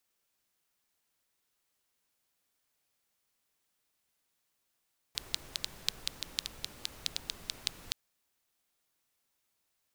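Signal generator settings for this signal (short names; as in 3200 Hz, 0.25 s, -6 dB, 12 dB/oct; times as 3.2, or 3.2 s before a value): rain from filtered ticks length 2.77 s, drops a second 6.2, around 3900 Hz, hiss -10 dB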